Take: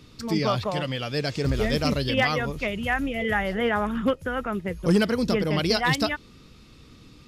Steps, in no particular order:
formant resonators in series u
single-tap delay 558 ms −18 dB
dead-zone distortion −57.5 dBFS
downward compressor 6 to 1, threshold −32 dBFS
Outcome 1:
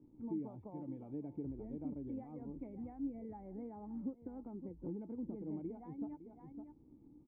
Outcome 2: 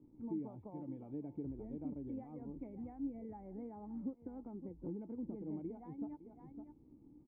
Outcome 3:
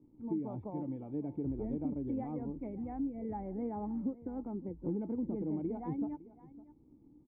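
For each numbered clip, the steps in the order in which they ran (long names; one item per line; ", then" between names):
dead-zone distortion, then single-tap delay, then downward compressor, then formant resonators in series
single-tap delay, then downward compressor, then dead-zone distortion, then formant resonators in series
dead-zone distortion, then formant resonators in series, then downward compressor, then single-tap delay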